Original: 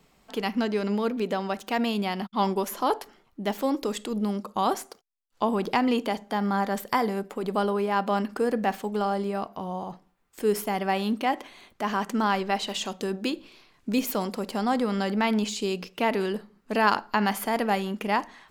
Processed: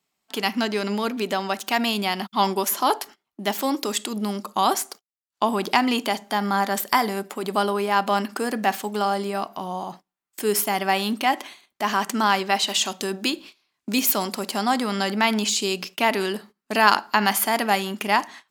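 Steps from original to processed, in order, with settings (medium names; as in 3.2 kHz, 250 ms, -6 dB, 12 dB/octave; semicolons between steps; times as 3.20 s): treble shelf 3.3 kHz +8 dB; gate -44 dBFS, range -21 dB; high-pass 290 Hz 6 dB/octave; peaking EQ 490 Hz -10 dB 0.24 oct; trim +5 dB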